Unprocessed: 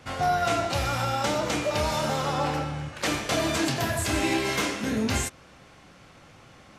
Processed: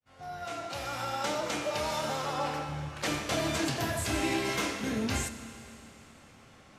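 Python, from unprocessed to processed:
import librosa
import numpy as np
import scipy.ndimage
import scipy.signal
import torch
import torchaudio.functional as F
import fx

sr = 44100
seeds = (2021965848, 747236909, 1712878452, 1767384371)

y = fx.fade_in_head(x, sr, length_s=1.23)
y = fx.low_shelf(y, sr, hz=150.0, db=-11.5, at=(0.45, 2.69))
y = fx.rev_schroeder(y, sr, rt60_s=3.3, comb_ms=27, drr_db=10.5)
y = F.gain(torch.from_numpy(y), -5.0).numpy()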